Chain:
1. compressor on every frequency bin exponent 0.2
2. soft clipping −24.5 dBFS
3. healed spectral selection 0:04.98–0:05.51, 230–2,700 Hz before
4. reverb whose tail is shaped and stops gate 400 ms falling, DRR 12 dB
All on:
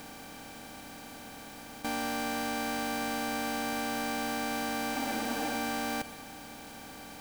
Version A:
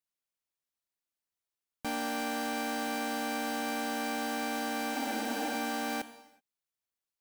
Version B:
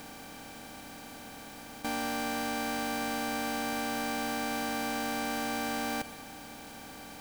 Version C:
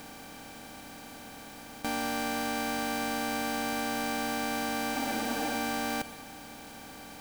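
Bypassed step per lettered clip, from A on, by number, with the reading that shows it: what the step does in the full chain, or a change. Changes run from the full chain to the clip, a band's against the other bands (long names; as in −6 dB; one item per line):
1, change in momentary loudness spread −10 LU
3, change in crest factor −3.5 dB
2, distortion level −21 dB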